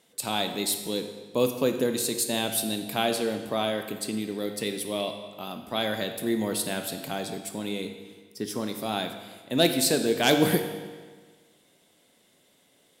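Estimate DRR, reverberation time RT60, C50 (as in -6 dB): 6.0 dB, 1.5 s, 7.5 dB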